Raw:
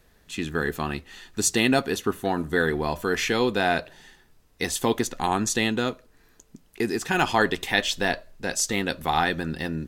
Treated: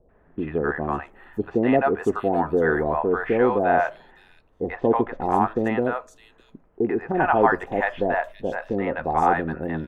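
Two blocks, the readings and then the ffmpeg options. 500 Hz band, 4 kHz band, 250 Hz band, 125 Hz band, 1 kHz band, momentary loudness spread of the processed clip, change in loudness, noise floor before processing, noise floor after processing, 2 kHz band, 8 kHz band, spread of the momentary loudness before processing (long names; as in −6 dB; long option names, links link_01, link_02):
+5.0 dB, below −20 dB, +2.0 dB, 0.0 dB, +5.0 dB, 10 LU, +2.0 dB, −59 dBFS, −58 dBFS, −2.0 dB, below −25 dB, 9 LU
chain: -filter_complex "[0:a]firequalizer=gain_entry='entry(170,0);entry(600,10);entry(4300,-27)':delay=0.05:min_phase=1,acrossover=split=680|3900[link_01][link_02][link_03];[link_02]adelay=90[link_04];[link_03]adelay=610[link_05];[link_01][link_04][link_05]amix=inputs=3:normalize=0"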